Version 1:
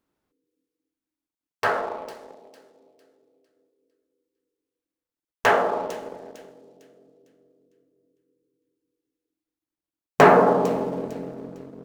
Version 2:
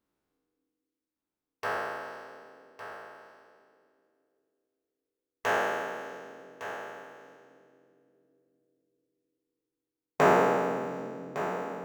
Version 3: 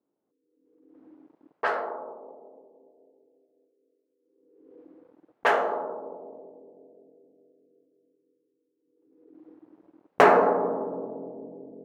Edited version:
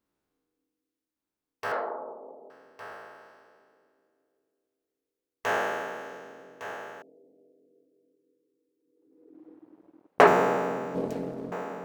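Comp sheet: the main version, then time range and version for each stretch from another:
2
1.72–2.50 s: from 3
7.02–10.27 s: from 3
10.95–11.52 s: from 1

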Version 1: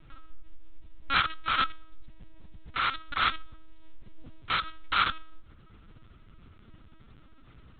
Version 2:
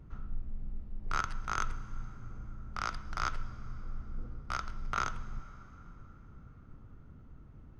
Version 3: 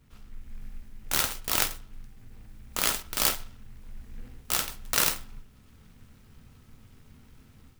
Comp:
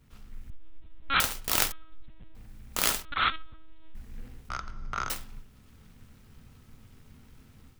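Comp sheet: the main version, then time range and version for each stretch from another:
3
0.50–1.20 s: from 1
1.72–2.35 s: from 1
3.05–3.95 s: from 1
4.49–5.10 s: from 2

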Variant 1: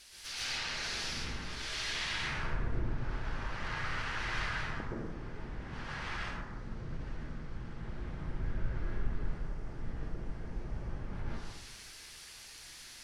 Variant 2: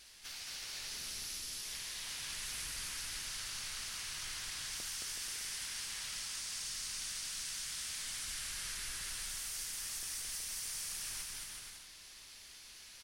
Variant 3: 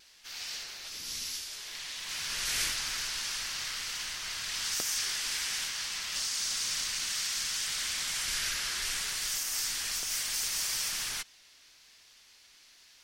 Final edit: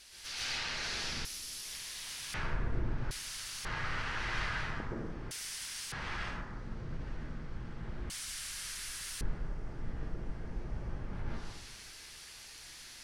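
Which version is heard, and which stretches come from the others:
1
1.25–2.34 s: from 2
3.11–3.65 s: from 2
5.31–5.92 s: from 2
8.10–9.21 s: from 2
not used: 3

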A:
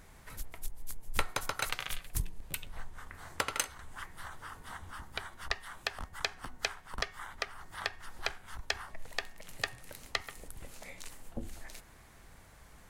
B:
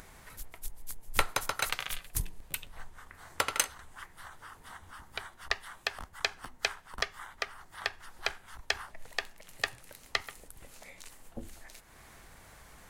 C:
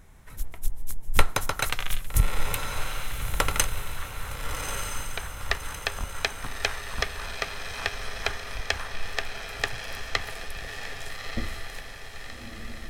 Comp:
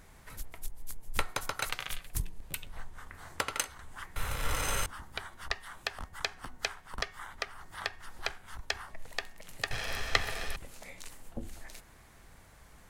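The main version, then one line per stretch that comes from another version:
A
4.16–4.86 s: from C
9.71–10.56 s: from C
not used: B

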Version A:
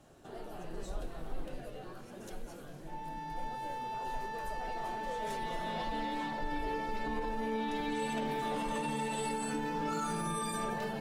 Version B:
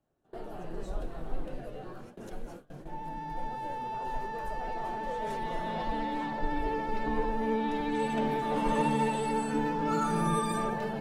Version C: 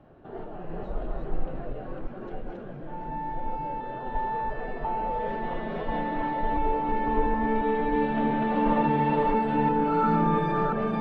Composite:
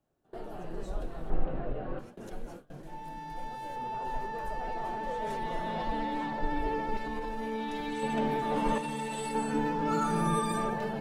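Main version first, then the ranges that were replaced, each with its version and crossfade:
B
1.30–1.99 s: from C
2.83–3.76 s: from A
6.97–8.03 s: from A
8.78–9.35 s: from A

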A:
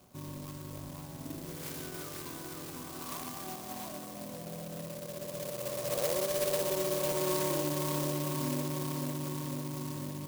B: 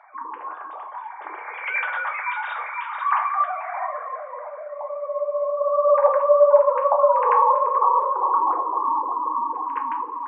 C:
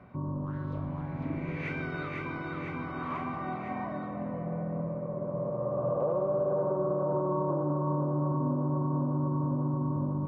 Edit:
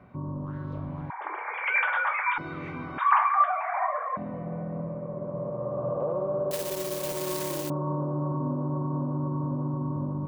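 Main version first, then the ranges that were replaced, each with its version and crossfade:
C
1.10–2.38 s: from B
2.98–4.17 s: from B
6.51–7.70 s: from A

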